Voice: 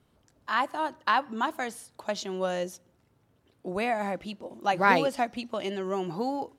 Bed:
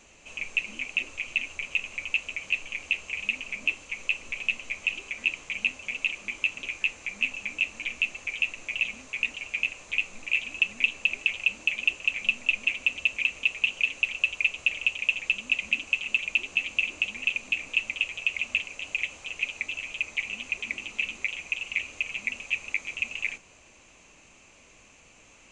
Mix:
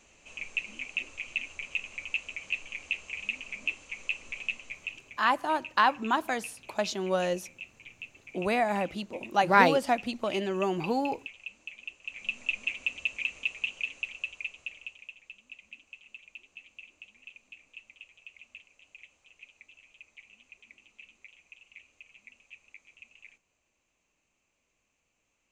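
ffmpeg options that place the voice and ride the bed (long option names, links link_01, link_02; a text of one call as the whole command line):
ffmpeg -i stem1.wav -i stem2.wav -filter_complex "[0:a]adelay=4700,volume=1.5dB[link_01];[1:a]volume=6dB,afade=type=out:start_time=4.4:duration=0.81:silence=0.251189,afade=type=in:start_time=12.02:duration=0.4:silence=0.281838,afade=type=out:start_time=13.39:duration=1.75:silence=0.149624[link_02];[link_01][link_02]amix=inputs=2:normalize=0" out.wav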